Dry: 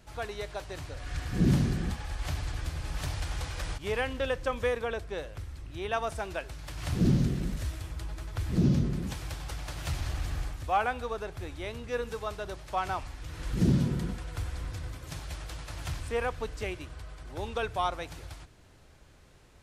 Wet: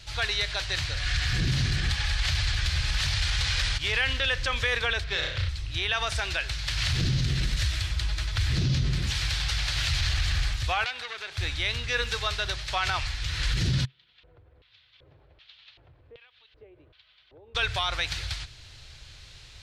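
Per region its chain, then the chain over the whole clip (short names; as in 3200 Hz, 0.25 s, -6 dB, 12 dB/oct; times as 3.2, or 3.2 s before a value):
5.04–5.49 resonant high shelf 5900 Hz -10 dB, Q 1.5 + flutter echo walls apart 5.6 m, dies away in 0.47 s + running maximum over 3 samples
10.84–11.38 Bessel high-pass 310 Hz + compressor 2.5:1, threshold -41 dBFS + core saturation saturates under 2300 Hz
13.85–17.55 compressor 8:1, threshold -39 dBFS + LFO band-pass square 1.3 Hz 440–3400 Hz + tape spacing loss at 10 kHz 42 dB
whole clip: EQ curve 130 Hz 0 dB, 190 Hz -15 dB, 1100 Hz -6 dB, 4100 Hz +12 dB, 12000 Hz -7 dB; limiter -27 dBFS; dynamic EQ 1700 Hz, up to +6 dB, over -55 dBFS, Q 1.4; gain +9 dB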